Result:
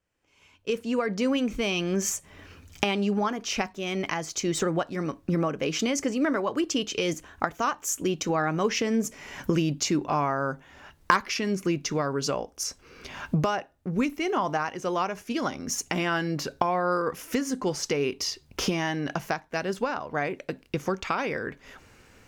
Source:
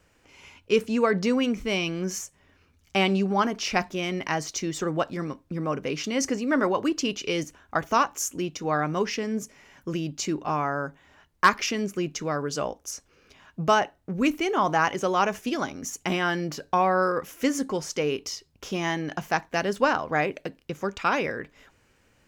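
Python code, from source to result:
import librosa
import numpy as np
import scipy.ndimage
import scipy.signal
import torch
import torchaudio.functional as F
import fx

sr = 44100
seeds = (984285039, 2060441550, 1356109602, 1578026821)

y = fx.doppler_pass(x, sr, speed_mps=14, closest_m=8.2, pass_at_s=9.43)
y = fx.recorder_agc(y, sr, target_db=-22.0, rise_db_per_s=22.0, max_gain_db=30)
y = F.gain(torch.from_numpy(y), 5.0).numpy()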